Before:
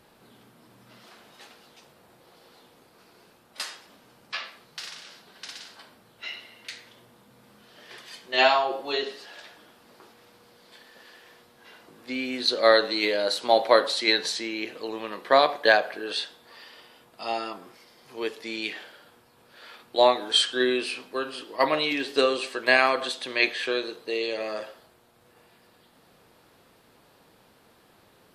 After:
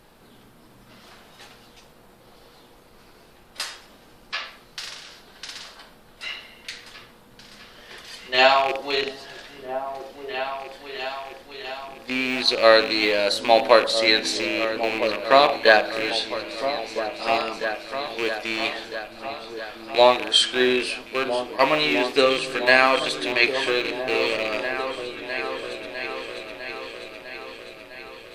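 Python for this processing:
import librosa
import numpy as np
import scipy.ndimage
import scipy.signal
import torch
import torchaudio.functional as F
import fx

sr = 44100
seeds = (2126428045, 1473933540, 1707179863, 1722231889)

y = fx.rattle_buzz(x, sr, strikes_db=-42.0, level_db=-19.0)
y = fx.dmg_noise_colour(y, sr, seeds[0], colour='brown', level_db=-63.0)
y = fx.echo_opening(y, sr, ms=653, hz=200, octaves=2, feedback_pct=70, wet_db=-6)
y = y * librosa.db_to_amplitude(3.5)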